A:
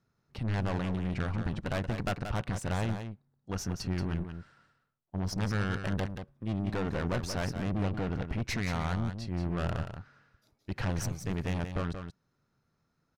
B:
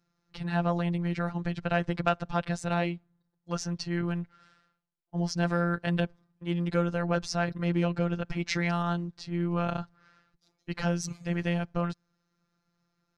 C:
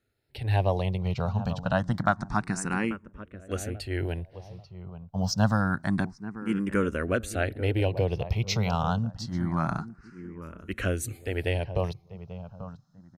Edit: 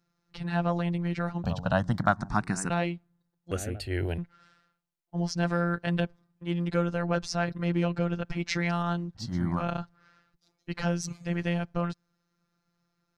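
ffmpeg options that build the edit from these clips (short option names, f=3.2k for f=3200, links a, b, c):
-filter_complex "[2:a]asplit=3[a][b][c];[1:a]asplit=4[d][e][f][g];[d]atrim=end=1.442[h];[a]atrim=start=1.438:end=2.702[i];[e]atrim=start=2.698:end=3.512[j];[b]atrim=start=3.508:end=4.182[k];[f]atrim=start=4.178:end=9.24[l];[c]atrim=start=9.14:end=9.65[m];[g]atrim=start=9.55[n];[h][i]acrossfade=d=0.004:c1=hsin:c2=hsin[o];[o][j]acrossfade=d=0.004:c1=hsin:c2=hsin[p];[p][k]acrossfade=d=0.004:c1=hsin:c2=hsin[q];[q][l]acrossfade=d=0.004:c1=hsin:c2=hsin[r];[r][m]acrossfade=d=0.1:c1=tri:c2=tri[s];[s][n]acrossfade=d=0.1:c1=tri:c2=tri"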